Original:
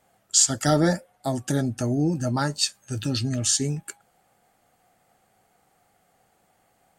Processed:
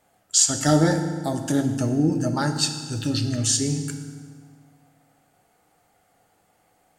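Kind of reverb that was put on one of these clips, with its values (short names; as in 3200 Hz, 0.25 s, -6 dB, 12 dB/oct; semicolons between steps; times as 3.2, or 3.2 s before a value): FDN reverb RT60 1.7 s, low-frequency decay 1.2×, high-frequency decay 0.8×, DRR 5.5 dB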